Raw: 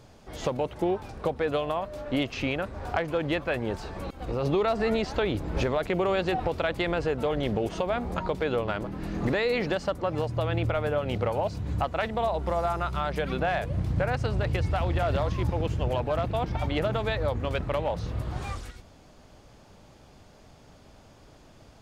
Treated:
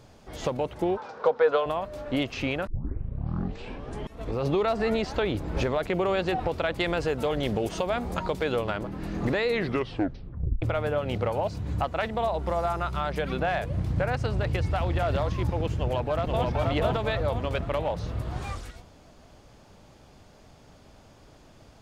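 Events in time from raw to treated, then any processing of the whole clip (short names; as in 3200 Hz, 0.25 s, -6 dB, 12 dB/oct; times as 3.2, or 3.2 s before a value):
0.97–1.66 speaker cabinet 300–6000 Hz, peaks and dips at 330 Hz -9 dB, 480 Hz +9 dB, 950 Hz +8 dB, 1400 Hz +9 dB, 2600 Hz -3 dB
2.67 tape start 1.75 s
6.8–8.7 high shelf 4400 Hz +8.5 dB
9.48 tape stop 1.14 s
15.78–16.48 echo throw 0.48 s, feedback 45%, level -1.5 dB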